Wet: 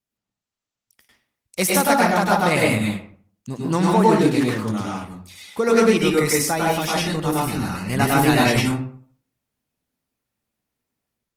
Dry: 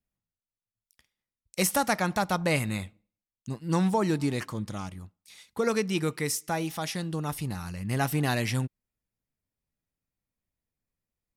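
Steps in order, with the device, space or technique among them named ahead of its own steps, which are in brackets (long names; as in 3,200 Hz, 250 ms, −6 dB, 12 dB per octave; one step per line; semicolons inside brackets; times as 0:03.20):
far-field microphone of a smart speaker (convolution reverb RT60 0.50 s, pre-delay 97 ms, DRR −3.5 dB; high-pass filter 160 Hz 6 dB per octave; automatic gain control gain up to 6 dB; level +1 dB; Opus 20 kbit/s 48,000 Hz)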